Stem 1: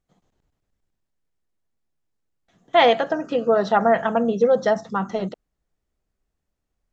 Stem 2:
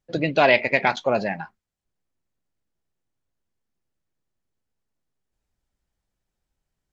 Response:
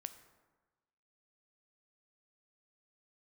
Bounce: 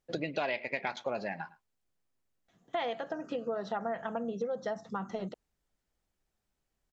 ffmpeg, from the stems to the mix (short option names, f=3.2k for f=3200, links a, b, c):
-filter_complex "[0:a]volume=-7.5dB[a];[1:a]lowshelf=f=120:g=-9.5,volume=-1.5dB,asplit=2[b][c];[c]volume=-23.5dB,aecho=0:1:108:1[d];[a][b][d]amix=inputs=3:normalize=0,acompressor=threshold=-33dB:ratio=4"